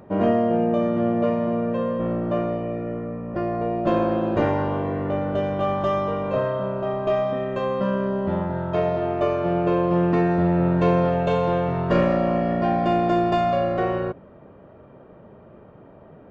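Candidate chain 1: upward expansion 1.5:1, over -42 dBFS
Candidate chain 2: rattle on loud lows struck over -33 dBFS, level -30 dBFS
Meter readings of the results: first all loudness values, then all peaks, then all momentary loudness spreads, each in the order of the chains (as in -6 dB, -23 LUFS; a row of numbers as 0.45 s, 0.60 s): -25.0 LUFS, -23.0 LUFS; -8.5 dBFS, -8.0 dBFS; 9 LU, 6 LU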